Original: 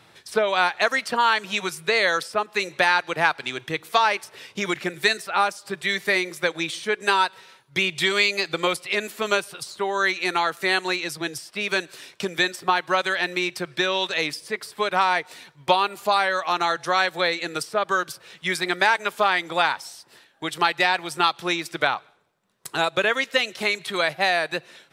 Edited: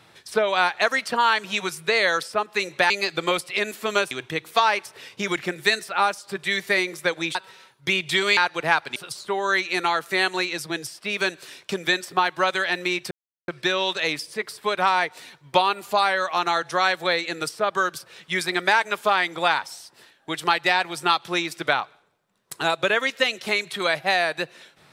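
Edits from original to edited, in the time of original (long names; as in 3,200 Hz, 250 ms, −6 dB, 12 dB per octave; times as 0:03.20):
0:02.90–0:03.49: swap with 0:08.26–0:09.47
0:06.73–0:07.24: remove
0:13.62: splice in silence 0.37 s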